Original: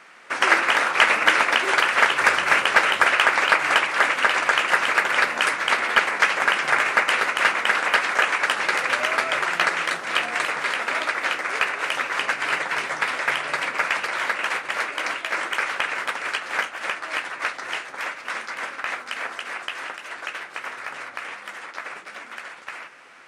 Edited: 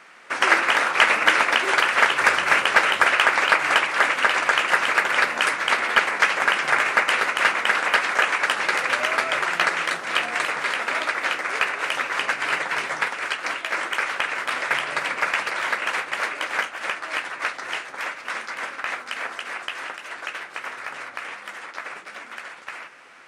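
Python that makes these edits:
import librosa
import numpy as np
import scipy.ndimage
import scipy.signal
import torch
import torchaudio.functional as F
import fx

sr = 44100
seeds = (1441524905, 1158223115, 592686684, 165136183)

y = fx.edit(x, sr, fx.swap(start_s=13.07, length_s=1.97, other_s=16.1, other_length_s=0.37), tone=tone)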